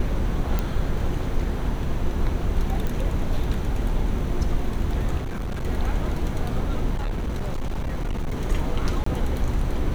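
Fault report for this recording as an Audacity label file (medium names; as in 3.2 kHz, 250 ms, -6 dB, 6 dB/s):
0.590000	0.590000	pop -11 dBFS
2.870000	2.870000	pop
5.180000	5.650000	clipped -25 dBFS
6.950000	8.400000	clipped -22.5 dBFS
9.040000	9.060000	dropout 24 ms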